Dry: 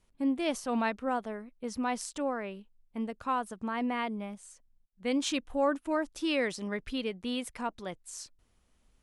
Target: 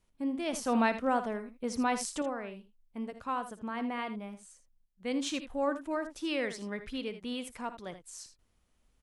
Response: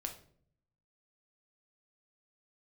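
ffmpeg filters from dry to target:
-filter_complex "[0:a]asettb=1/sr,asplit=3[s0][s1][s2];[s0]atrim=end=0.534[s3];[s1]atrim=start=0.53:end=2.22,asetpts=PTS-STARTPTS,afade=t=in:d=0.004:c=qsin,afade=t=out:st=1.686:d=0.004:c=qsin,acontrast=47[s4];[s2]atrim=start=2.216[s5];[s3][s4]acrossfade=d=0.004:c1=hsin:c2=qsin[s6];[s6][s5]acrossfade=d=0.004:c1=qsin:c2=hsin,asplit=2[s7][s8];[s8]aecho=0:1:57|79:0.168|0.251[s9];[s7][s9]amix=inputs=2:normalize=0,volume=0.668"

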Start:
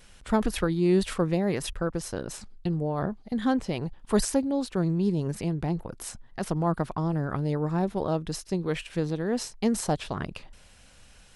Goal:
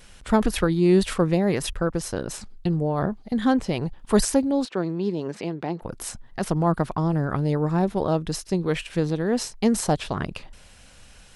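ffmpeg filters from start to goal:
-filter_complex "[0:a]asettb=1/sr,asplit=3[s0][s1][s2];[s0]atrim=end=4.654[s3];[s1]atrim=start=4.65:end=5.82,asetpts=PTS-STARTPTS,afade=t=in:d=0.004:c=qsin,afade=t=out:st=1.166:d=0.004:c=qsin,highpass=280,lowpass=4900[s4];[s2]atrim=start=5.816[s5];[s3][s4]acrossfade=d=0.004:c1=hsin:c2=qsin[s6];[s6][s5]acrossfade=d=0.004:c1=qsin:c2=hsin,volume=1.68"

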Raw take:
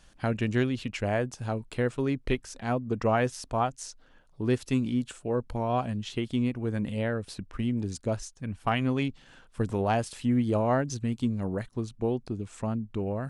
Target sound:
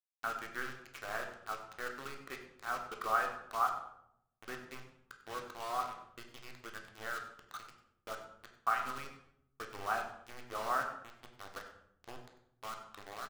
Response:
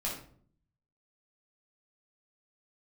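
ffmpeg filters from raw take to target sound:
-filter_complex "[0:a]asplit=3[s0][s1][s2];[s0]afade=t=out:st=11.6:d=0.02[s3];[s1]acompressor=threshold=0.0282:ratio=16,afade=t=in:st=11.6:d=0.02,afade=t=out:st=12.07:d=0.02[s4];[s2]afade=t=in:st=12.07:d=0.02[s5];[s3][s4][s5]amix=inputs=3:normalize=0,bandpass=f=1300:t=q:w=6.3:csg=0,acrusher=bits=7:mix=0:aa=0.000001,aecho=1:1:98:0.112,asplit=2[s6][s7];[1:a]atrim=start_sample=2205,asetrate=27783,aresample=44100,lowpass=6500[s8];[s7][s8]afir=irnorm=-1:irlink=0,volume=0.501[s9];[s6][s9]amix=inputs=2:normalize=0,volume=1.19"

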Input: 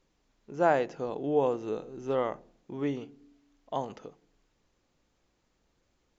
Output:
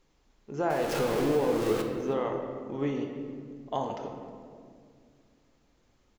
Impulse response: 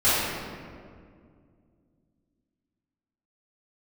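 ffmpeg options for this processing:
-filter_complex "[0:a]asettb=1/sr,asplit=3[s0][s1][s2];[s0]atrim=end=0.704[s3];[s1]atrim=start=0.7:end=1.82,asetpts=PTS-STARTPTS,afade=t=in:d=0.004:c=qsin,afade=t=out:st=1.116:d=0.004:c=qsin,aeval=exprs='val(0)+0.5*0.0376*sgn(val(0))':c=same[s4];[s2]atrim=start=1.816[s5];[s3][s4]acrossfade=d=0.004:c1=hsin:c2=qsin[s6];[s6][s5]acrossfade=d=0.004:c1=qsin:c2=hsin,acompressor=threshold=0.0355:ratio=5,aecho=1:1:315:0.0794,asplit=2[s7][s8];[1:a]atrim=start_sample=2205[s9];[s8][s9]afir=irnorm=-1:irlink=0,volume=0.1[s10];[s7][s10]amix=inputs=2:normalize=0,volume=1.26"

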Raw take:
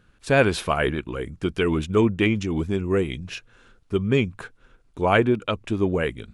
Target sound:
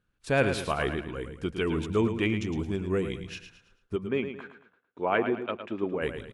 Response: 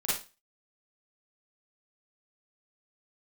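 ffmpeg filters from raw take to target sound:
-filter_complex "[0:a]agate=range=0.282:threshold=0.00282:ratio=16:detection=peak,asplit=3[s0][s1][s2];[s0]afade=t=out:st=3.95:d=0.02[s3];[s1]highpass=240,lowpass=2600,afade=t=in:st=3.95:d=0.02,afade=t=out:st=6.01:d=0.02[s4];[s2]afade=t=in:st=6.01:d=0.02[s5];[s3][s4][s5]amix=inputs=3:normalize=0,aecho=1:1:110|220|330|440:0.355|0.135|0.0512|0.0195,volume=0.473"

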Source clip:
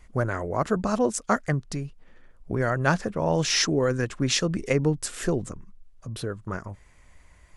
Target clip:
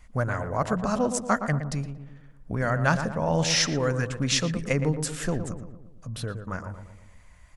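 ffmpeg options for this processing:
-filter_complex "[0:a]equalizer=f=370:t=o:w=0.5:g=-10,asplit=2[s0][s1];[s1]adelay=116,lowpass=f=1300:p=1,volume=0.422,asplit=2[s2][s3];[s3]adelay=116,lowpass=f=1300:p=1,volume=0.54,asplit=2[s4][s5];[s5]adelay=116,lowpass=f=1300:p=1,volume=0.54,asplit=2[s6][s7];[s7]adelay=116,lowpass=f=1300:p=1,volume=0.54,asplit=2[s8][s9];[s9]adelay=116,lowpass=f=1300:p=1,volume=0.54,asplit=2[s10][s11];[s11]adelay=116,lowpass=f=1300:p=1,volume=0.54,asplit=2[s12][s13];[s13]adelay=116,lowpass=f=1300:p=1,volume=0.54[s14];[s0][s2][s4][s6][s8][s10][s12][s14]amix=inputs=8:normalize=0"

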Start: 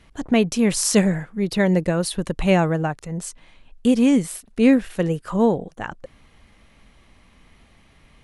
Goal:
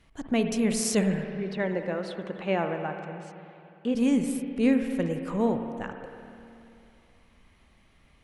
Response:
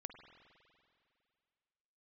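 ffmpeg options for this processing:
-filter_complex "[0:a]asettb=1/sr,asplit=3[s0][s1][s2];[s0]atrim=end=1.344[s3];[s1]atrim=start=1.34:end=3.95,asetpts=PTS-STARTPTS,afade=t=in:d=0.004:c=qsin,afade=t=out:st=2.606:d=0.004:c=qsin,highpass=260,lowpass=3000[s4];[s2]atrim=start=3.946[s5];[s3][s4]acrossfade=d=0.004:c1=hsin:c2=qsin[s6];[s6][s5]acrossfade=d=0.004:c1=qsin:c2=hsin[s7];[1:a]atrim=start_sample=2205,asetrate=38808,aresample=44100[s8];[s7][s8]afir=irnorm=-1:irlink=0,volume=0.708"

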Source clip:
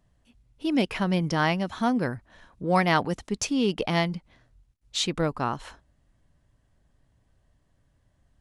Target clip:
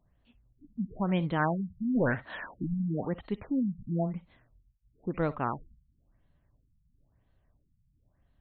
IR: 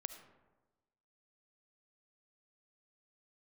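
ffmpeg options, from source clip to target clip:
-filter_complex "[0:a]asplit=3[s0][s1][s2];[s0]afade=t=out:st=1.95:d=0.02[s3];[s1]asplit=2[s4][s5];[s5]highpass=f=720:p=1,volume=17.8,asoftclip=type=tanh:threshold=0.2[s6];[s4][s6]amix=inputs=2:normalize=0,lowpass=f=7000:p=1,volume=0.501,afade=t=in:st=1.95:d=0.02,afade=t=out:st=2.72:d=0.02[s7];[s2]afade=t=in:st=2.72:d=0.02[s8];[s3][s7][s8]amix=inputs=3:normalize=0[s9];[1:a]atrim=start_sample=2205,atrim=end_sample=3087[s10];[s9][s10]afir=irnorm=-1:irlink=0,afftfilt=real='re*lt(b*sr/1024,210*pow(4500/210,0.5+0.5*sin(2*PI*0.99*pts/sr)))':imag='im*lt(b*sr/1024,210*pow(4500/210,0.5+0.5*sin(2*PI*0.99*pts/sr)))':win_size=1024:overlap=0.75"

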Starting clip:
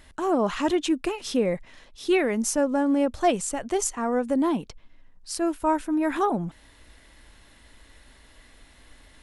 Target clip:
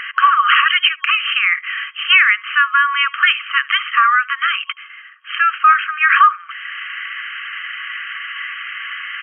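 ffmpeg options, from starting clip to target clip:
-filter_complex "[0:a]afftfilt=real='re*between(b*sr/4096,1100,3200)':imag='im*between(b*sr/4096,1100,3200)':win_size=4096:overlap=0.75,acompressor=threshold=0.00178:ratio=1.5,asplit=2[s0][s1];[s1]aecho=0:1:73:0.0668[s2];[s0][s2]amix=inputs=2:normalize=0,alimiter=level_in=47.3:limit=0.891:release=50:level=0:latency=1,volume=0.891"

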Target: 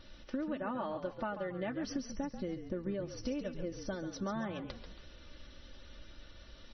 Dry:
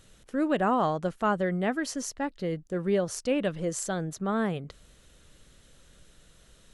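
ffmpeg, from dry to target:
-filter_complex "[0:a]asplit=3[s0][s1][s2];[s0]afade=t=out:st=1.83:d=0.02[s3];[s1]lowshelf=f=270:g=11.5,afade=t=in:st=1.83:d=0.02,afade=t=out:st=3.94:d=0.02[s4];[s2]afade=t=in:st=3.94:d=0.02[s5];[s3][s4][s5]amix=inputs=3:normalize=0,aecho=1:1:3.4:0.79,acompressor=threshold=0.0178:ratio=16,asplit=6[s6][s7][s8][s9][s10][s11];[s7]adelay=138,afreqshift=-45,volume=0.335[s12];[s8]adelay=276,afreqshift=-90,volume=0.148[s13];[s9]adelay=414,afreqshift=-135,volume=0.0646[s14];[s10]adelay=552,afreqshift=-180,volume=0.0285[s15];[s11]adelay=690,afreqshift=-225,volume=0.0126[s16];[s6][s12][s13][s14][s15][s16]amix=inputs=6:normalize=0,volume=1.12" -ar 24000 -c:a libmp3lame -b:a 24k

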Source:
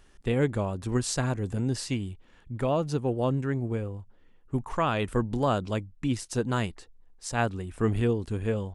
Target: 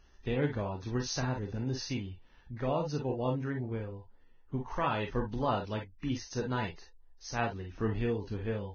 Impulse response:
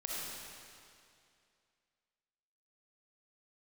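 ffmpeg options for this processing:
-filter_complex "[1:a]atrim=start_sample=2205,atrim=end_sample=3528,asetrate=61740,aresample=44100[s0];[0:a][s0]afir=irnorm=-1:irlink=0" -ar 16000 -c:a libvorbis -b:a 16k

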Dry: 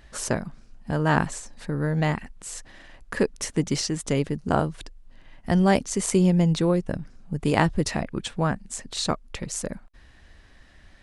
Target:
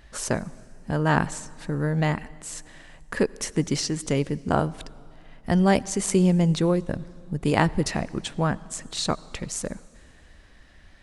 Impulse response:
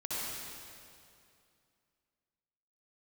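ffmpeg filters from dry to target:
-filter_complex "[0:a]asplit=2[s0][s1];[1:a]atrim=start_sample=2205,adelay=20[s2];[s1][s2]afir=irnorm=-1:irlink=0,volume=0.0562[s3];[s0][s3]amix=inputs=2:normalize=0"

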